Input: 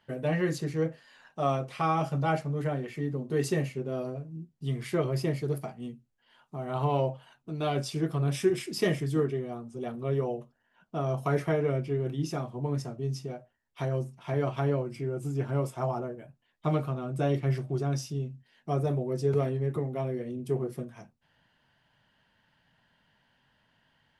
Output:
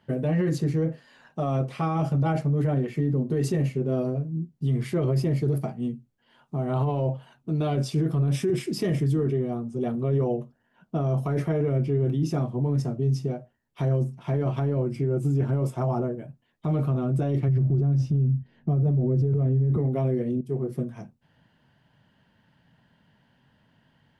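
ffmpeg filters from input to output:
-filter_complex "[0:a]asplit=3[s0][s1][s2];[s0]afade=t=out:st=17.48:d=0.02[s3];[s1]aemphasis=mode=reproduction:type=riaa,afade=t=in:st=17.48:d=0.02,afade=t=out:st=19.76:d=0.02[s4];[s2]afade=t=in:st=19.76:d=0.02[s5];[s3][s4][s5]amix=inputs=3:normalize=0,asplit=2[s6][s7];[s6]atrim=end=20.41,asetpts=PTS-STARTPTS,afade=t=out:st=20.406:d=0.004:c=hsin:silence=0.188365[s8];[s7]atrim=start=20.41,asetpts=PTS-STARTPTS,afade=t=in:d=0.5:silence=0.188365[s9];[s8][s9]concat=n=2:v=0:a=1,equalizer=f=170:w=0.34:g=11,alimiter=limit=0.133:level=0:latency=1:release=15"

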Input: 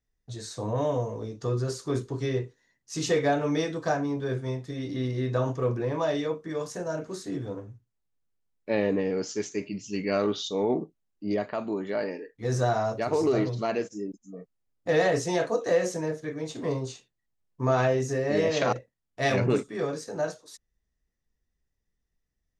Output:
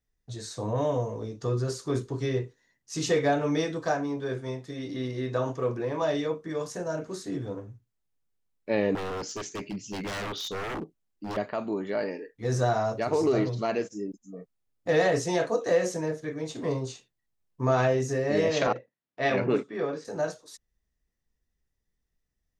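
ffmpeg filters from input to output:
-filter_complex "[0:a]asettb=1/sr,asplit=3[s0][s1][s2];[s0]atrim=end=3.854[s3];[s1]atrim=start=3.85:end=6.02,asetpts=PTS-STARTPTS,afade=t=in:d=0.004:c=qsin,afade=t=out:st=2.166:d=0.004:c=qsin,highpass=f=200:p=1[s4];[s2]atrim=start=6.016[s5];[s3][s4]acrossfade=d=0.004:c1=hsin:c2=qsin[s6];[s6][s5]acrossfade=d=0.004:c1=qsin:c2=hsin,asettb=1/sr,asplit=3[s7][s8][s9];[s7]atrim=end=8.954[s10];[s8]atrim=start=8.95:end=11.37,asetpts=PTS-STARTPTS,afade=t=in:d=0.004:c=qsin,afade=t=out:st=2.416:d=0.004:c=qsin,aeval=exprs='0.0376*(abs(mod(val(0)/0.0376+3,4)-2)-1)':c=same[s11];[s9]atrim=start=11.366[s12];[s10][s11]acrossfade=d=0.004:c1=hsin:c2=qsin[s13];[s13][s12]acrossfade=d=0.004:c1=qsin:c2=hsin,asettb=1/sr,asplit=3[s14][s15][s16];[s14]atrim=end=18.674[s17];[s15]atrim=start=18.67:end=20.05,asetpts=PTS-STARTPTS,afade=t=in:d=0.004:c=qsin,afade=t=out:st=1.376:d=0.004:c=qsin,highpass=180,lowpass=3400[s18];[s16]atrim=start=20.046[s19];[s17][s18]acrossfade=d=0.004:c1=hsin:c2=qsin[s20];[s20][s19]acrossfade=d=0.004:c1=qsin:c2=hsin"

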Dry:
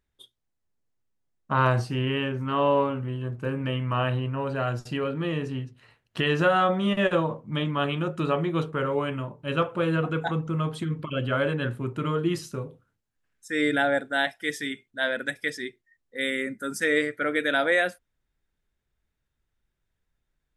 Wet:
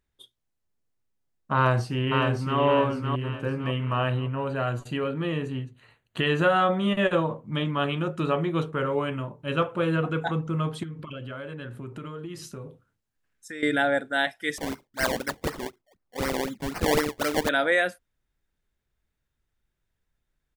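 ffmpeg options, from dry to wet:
-filter_complex "[0:a]asplit=2[s0][s1];[s1]afade=t=in:st=1.55:d=0.01,afade=t=out:st=2.59:d=0.01,aecho=0:1:560|1120|1680|2240|2800:0.630957|0.252383|0.100953|0.0403813|0.0161525[s2];[s0][s2]amix=inputs=2:normalize=0,asettb=1/sr,asplit=3[s3][s4][s5];[s3]atrim=end=4.044[s6];[s4]atrim=start=4.04:end=7.44,asetpts=PTS-STARTPTS,afade=t=in:d=0.004:c=qsin,afade=t=out:st=3.396:d=0.004:c=qsin,asuperstop=centerf=5300:order=4:qfactor=3.9[s7];[s5]atrim=start=7.436[s8];[s6][s7]acrossfade=d=0.004:c1=hsin:c2=qsin[s9];[s9][s8]acrossfade=d=0.004:c1=qsin:c2=hsin,asettb=1/sr,asplit=3[s10][s11][s12];[s10]atrim=end=8.244[s13];[s11]atrim=start=8.24:end=10.05,asetpts=PTS-STARTPTS,afade=t=in:d=0.004:c=qsin,afade=t=out:st=1.806:d=0.004:c=qsin,bandreject=f=4800:w=12[s14];[s12]atrim=start=10.046[s15];[s13][s14]acrossfade=d=0.004:c1=hsin:c2=qsin[s16];[s16][s15]acrossfade=d=0.004:c1=qsin:c2=hsin,asettb=1/sr,asplit=3[s17][s18][s19];[s17]atrim=end=10.834[s20];[s18]atrim=start=10.83:end=13.63,asetpts=PTS-STARTPTS,afade=t=in:d=0.004:c=qsin,afade=t=out:st=2.796:d=0.004:c=qsin,acompressor=threshold=0.02:ratio=6:attack=3.2:release=140:knee=1:detection=peak[s21];[s19]atrim=start=13.626[s22];[s20][s21]acrossfade=d=0.004:c1=hsin:c2=qsin[s23];[s23][s22]acrossfade=d=0.004:c1=qsin:c2=hsin,asettb=1/sr,asplit=3[s24][s25][s26];[s24]atrim=end=14.584[s27];[s25]atrim=start=14.58:end=17.49,asetpts=PTS-STARTPTS,afade=t=in:d=0.004:c=qsin,afade=t=out:st=2.906:d=0.004:c=qsin,acrusher=samples=24:mix=1:aa=0.000001:lfo=1:lforange=24:lforate=4[s28];[s26]atrim=start=17.486[s29];[s27][s28]acrossfade=d=0.004:c1=hsin:c2=qsin[s30];[s30][s29]acrossfade=d=0.004:c1=qsin:c2=hsin"

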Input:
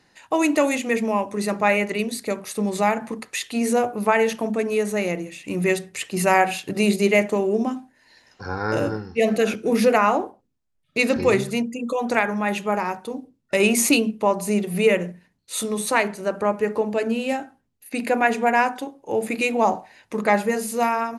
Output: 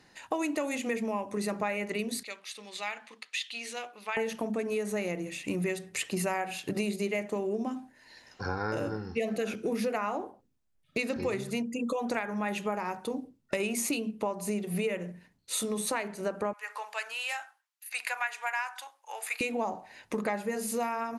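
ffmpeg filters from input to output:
-filter_complex "[0:a]asettb=1/sr,asplit=3[s0][s1][s2];[s0]atrim=end=2.234[s3];[s1]atrim=start=2.23:end=4.17,asetpts=PTS-STARTPTS,afade=t=in:d=0.004:c=qsin,afade=t=out:st=1.936:d=0.004:c=qsin,bandpass=f=3300:t=q:w=1.8[s4];[s2]atrim=start=4.166[s5];[s3][s4]acrossfade=d=0.004:c1=hsin:c2=qsin[s6];[s6][s5]acrossfade=d=0.004:c1=qsin:c2=hsin,asettb=1/sr,asplit=3[s7][s8][s9];[s7]atrim=end=16.534[s10];[s8]atrim=start=16.53:end=19.41,asetpts=PTS-STARTPTS,afade=t=in:d=0.004:c=qsin,afade=t=out:st=2.876:d=0.004:c=qsin,highpass=f=1000:w=0.5412,highpass=f=1000:w=1.3066[s11];[s9]atrim=start=19.406[s12];[s10][s11]acrossfade=d=0.004:c1=hsin:c2=qsin[s13];[s13][s12]acrossfade=d=0.004:c1=qsin:c2=hsin,acompressor=threshold=0.0355:ratio=6"

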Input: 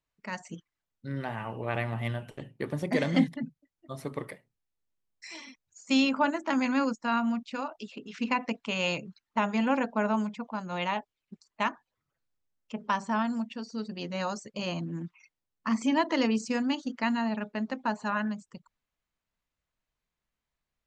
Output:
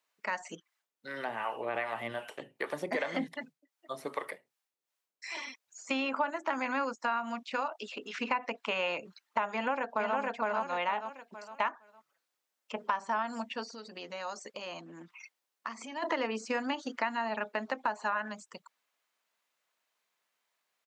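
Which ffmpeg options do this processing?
-filter_complex "[0:a]asettb=1/sr,asplit=3[s0][s1][s2];[s0]atrim=end=0.554[s3];[s1]atrim=start=0.55:end=5.37,asetpts=PTS-STARTPTS,afade=t=in:d=0.004:c=qsin,afade=t=out:st=4.816:d=0.004:c=qsin,acrossover=split=480[s4][s5];[s4]aeval=exprs='val(0)*(1-0.7/2+0.7/2*cos(2*PI*2.6*n/s))':c=same[s6];[s5]aeval=exprs='val(0)*(1-0.7/2-0.7/2*cos(2*PI*2.6*n/s))':c=same[s7];[s6][s7]amix=inputs=2:normalize=0[s8];[s2]atrim=start=5.366[s9];[s3][s8]acrossfade=d=0.004:c1=hsin:c2=qsin[s10];[s10][s9]acrossfade=d=0.004:c1=qsin:c2=hsin,asplit=2[s11][s12];[s12]afade=t=in:st=9.51:d=0.01,afade=t=out:st=10.17:d=0.01,aecho=0:1:460|920|1380|1840:0.891251|0.222813|0.0557032|0.0139258[s13];[s11][s13]amix=inputs=2:normalize=0,asplit=3[s14][s15][s16];[s14]afade=t=out:st=13.73:d=0.02[s17];[s15]acompressor=threshold=0.01:ratio=12:attack=3.2:release=140:knee=1:detection=peak,afade=t=in:st=13.73:d=0.02,afade=t=out:st=16.02:d=0.02[s18];[s16]afade=t=in:st=16.02:d=0.02[s19];[s17][s18][s19]amix=inputs=3:normalize=0,acrossover=split=2600[s20][s21];[s21]acompressor=threshold=0.002:ratio=4:attack=1:release=60[s22];[s20][s22]amix=inputs=2:normalize=0,highpass=540,acompressor=threshold=0.0126:ratio=4,volume=2.66"

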